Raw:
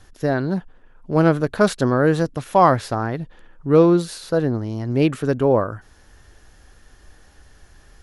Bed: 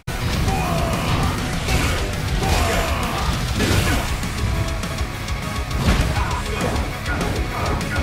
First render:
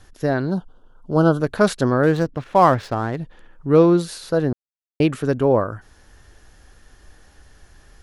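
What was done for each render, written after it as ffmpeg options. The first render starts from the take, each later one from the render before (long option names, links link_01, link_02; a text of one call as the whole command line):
ffmpeg -i in.wav -filter_complex "[0:a]asplit=3[link_01][link_02][link_03];[link_01]afade=type=out:start_time=0.5:duration=0.02[link_04];[link_02]asuperstop=centerf=2100:order=12:qfactor=1.6,afade=type=in:start_time=0.5:duration=0.02,afade=type=out:start_time=1.39:duration=0.02[link_05];[link_03]afade=type=in:start_time=1.39:duration=0.02[link_06];[link_04][link_05][link_06]amix=inputs=3:normalize=0,asettb=1/sr,asplit=3[link_07][link_08][link_09];[link_07]atrim=end=2.034[link_10];[link_08]atrim=start=2.03:end=3.17,asetpts=PTS-STARTPTS,afade=type=in:duration=0.004:curve=qsin,afade=type=out:start_time=1.136:duration=0.004:curve=qsin,adynamicsmooth=sensitivity=7:basefreq=2300[link_11];[link_09]atrim=start=3.166[link_12];[link_10][link_11]acrossfade=duration=0.004:curve1=hsin:curve2=qsin[link_13];[link_13][link_12]acrossfade=duration=0.004:curve1=qsin:curve2=hsin,asplit=3[link_14][link_15][link_16];[link_14]atrim=end=4.53,asetpts=PTS-STARTPTS,afade=type=out:start_time=4.526:duration=0.004:curve=hsin[link_17];[link_15]atrim=start=4.53:end=5,asetpts=PTS-STARTPTS,volume=0[link_18];[link_16]atrim=start=5,asetpts=PTS-STARTPTS,afade=type=in:duration=0.004:curve=hsin[link_19];[link_17][link_18][link_19]concat=n=3:v=0:a=1" out.wav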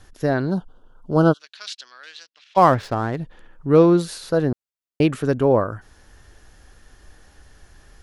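ffmpeg -i in.wav -filter_complex "[0:a]asplit=3[link_01][link_02][link_03];[link_01]afade=type=out:start_time=1.32:duration=0.02[link_04];[link_02]asuperpass=centerf=4000:order=4:qfactor=1.2,afade=type=in:start_time=1.32:duration=0.02,afade=type=out:start_time=2.56:duration=0.02[link_05];[link_03]afade=type=in:start_time=2.56:duration=0.02[link_06];[link_04][link_05][link_06]amix=inputs=3:normalize=0" out.wav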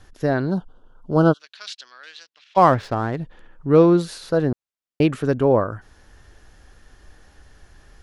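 ffmpeg -i in.wav -af "highshelf=frequency=8000:gain=-7" out.wav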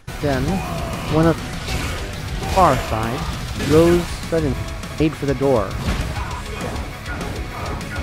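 ffmpeg -i in.wav -i bed.wav -filter_complex "[1:a]volume=-4.5dB[link_01];[0:a][link_01]amix=inputs=2:normalize=0" out.wav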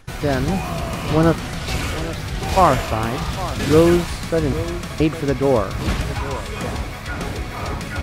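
ffmpeg -i in.wav -af "aecho=1:1:808:0.188" out.wav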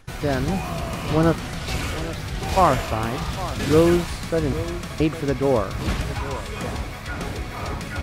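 ffmpeg -i in.wav -af "volume=-3dB" out.wav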